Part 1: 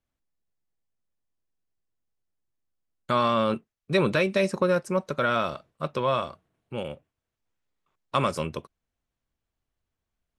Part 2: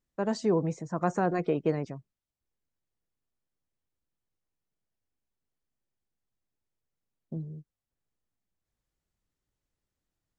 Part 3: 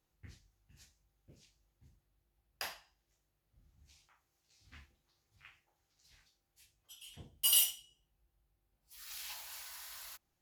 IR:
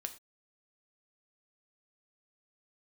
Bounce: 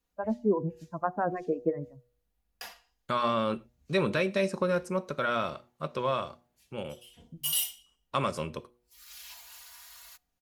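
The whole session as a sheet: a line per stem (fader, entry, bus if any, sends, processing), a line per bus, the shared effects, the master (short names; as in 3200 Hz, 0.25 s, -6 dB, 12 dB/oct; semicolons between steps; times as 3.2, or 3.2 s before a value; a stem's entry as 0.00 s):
-8.0 dB, 0.00 s, send -3.5 dB, dry
+2.0 dB, 0.00 s, send -13.5 dB, per-bin expansion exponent 2; LPF 1800 Hz 24 dB/oct; photocell phaser 6 Hz
-4.5 dB, 0.00 s, send -16.5 dB, comb 4.2 ms, depth 83%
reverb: on, pre-delay 3 ms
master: de-hum 121.1 Hz, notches 7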